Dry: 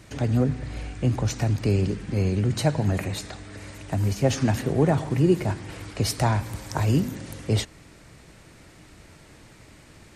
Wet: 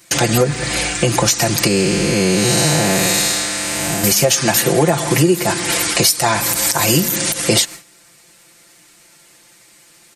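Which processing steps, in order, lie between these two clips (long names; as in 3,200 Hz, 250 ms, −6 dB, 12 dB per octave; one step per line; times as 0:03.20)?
0:01.67–0:04.04: spectrum smeared in time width 326 ms
RIAA equalisation recording
noise gate with hold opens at −34 dBFS
comb filter 5.8 ms, depth 81%
downward compressor 6 to 1, threshold −29 dBFS, peak gain reduction 17 dB
boost into a limiter +19.5 dB
level −1 dB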